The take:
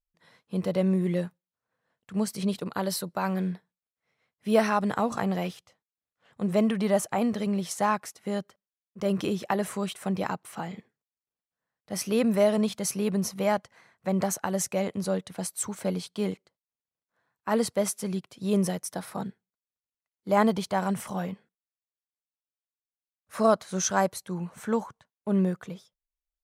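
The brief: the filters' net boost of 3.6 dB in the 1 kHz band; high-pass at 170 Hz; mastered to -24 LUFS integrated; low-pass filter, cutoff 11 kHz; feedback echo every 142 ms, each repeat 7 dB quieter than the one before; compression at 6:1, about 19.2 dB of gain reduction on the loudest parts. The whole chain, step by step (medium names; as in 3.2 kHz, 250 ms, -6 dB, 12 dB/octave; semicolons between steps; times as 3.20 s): high-pass 170 Hz; low-pass 11 kHz; peaking EQ 1 kHz +4.5 dB; compression 6:1, threshold -36 dBFS; feedback delay 142 ms, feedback 45%, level -7 dB; trim +16 dB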